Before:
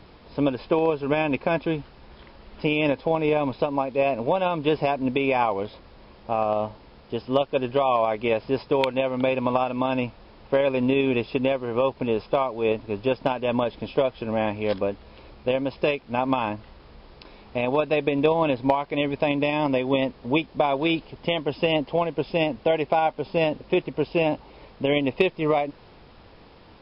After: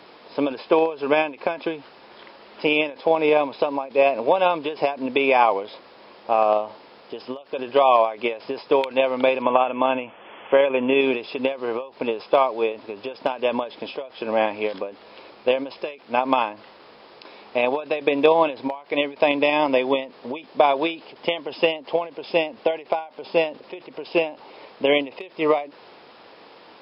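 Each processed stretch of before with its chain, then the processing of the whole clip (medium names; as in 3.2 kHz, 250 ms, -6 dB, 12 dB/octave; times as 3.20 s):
9.42–11.01 s: block-companded coder 7-bit + brick-wall FIR low-pass 3.5 kHz + tape noise reduction on one side only encoder only
whole clip: high-pass 370 Hz 12 dB/octave; endings held to a fixed fall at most 160 dB/s; trim +6 dB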